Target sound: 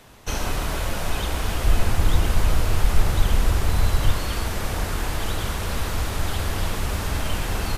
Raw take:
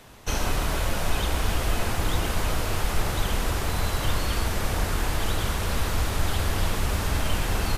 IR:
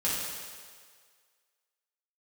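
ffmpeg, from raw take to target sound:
-filter_complex "[0:a]asettb=1/sr,asplit=3[a][b][c];[a]atrim=end=1.644[d];[b]atrim=start=1.64:end=4.12,asetpts=PTS-STARTPTS,afade=t=in:d=0.004:c=qsin,afade=t=out:st=2.476:d=0.004:c=qsin,lowshelf=f=130:g=9[e];[c]atrim=start=4.116[f];[d][e]acrossfade=d=0.004:c1=hsin:c2=qsin[g];[g][f]acrossfade=d=0.004:c1=qsin:c2=hsin"

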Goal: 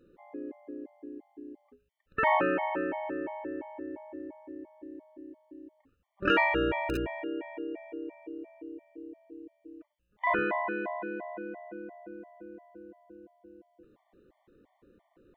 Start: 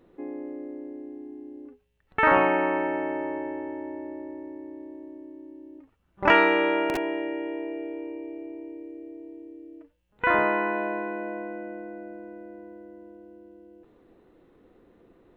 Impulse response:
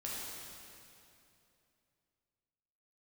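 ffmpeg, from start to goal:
-filter_complex "[0:a]asettb=1/sr,asplit=3[a][b][c];[a]atrim=end=6.384[d];[b]atrim=start=6.38:end=7.15,asetpts=PTS-STARTPTS,afade=t=in:d=0.004:c=qsin,afade=t=out:st=0.766:d=0.004:c=qsin,aeval=exprs='val(0)+0.0224*(sin(2*PI*60*n/s)+sin(2*PI*2*60*n/s)/2+sin(2*PI*3*60*n/s)/3+sin(2*PI*4*60*n/s)/4+sin(2*PI*5*60*n/s)/5)':c=same[e];[c]atrim=start=7.146[f];[d][e]acrossfade=d=0.004:c1=hsin:c2=qsin[g];[g][f]acrossfade=d=0.004:c1=qsin:c2=hsin,afftfilt=real='re*gt(sin(2*PI*2.9*pts/sr)*(1-2*mod(floor(b*sr/1024/600),2)),0)':imag='im*gt(sin(2*PI*2.9*pts/sr)*(1-2*mod(floor(b*sr/1024/600),2)),0)':win_size=1024:overlap=0.75,volume=-2.5dB"

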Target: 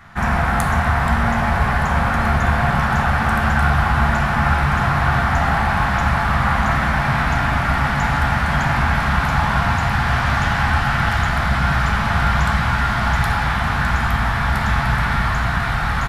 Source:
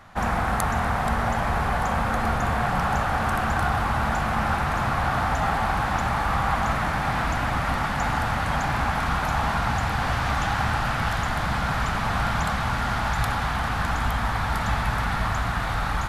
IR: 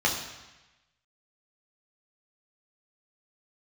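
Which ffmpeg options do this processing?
-filter_complex "[0:a]asplit=2[a][b];[1:a]atrim=start_sample=2205,asetrate=35280,aresample=44100[c];[b][c]afir=irnorm=-1:irlink=0,volume=-13dB[d];[a][d]amix=inputs=2:normalize=0,aresample=32000,aresample=44100,volume=2.5dB"

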